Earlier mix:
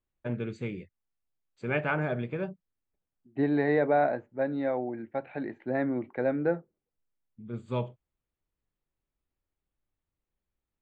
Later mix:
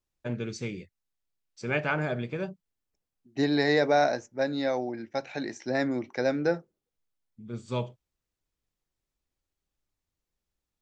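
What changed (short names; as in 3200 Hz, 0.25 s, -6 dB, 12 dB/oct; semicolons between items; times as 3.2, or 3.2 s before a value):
second voice: remove air absorption 370 m; master: remove running mean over 8 samples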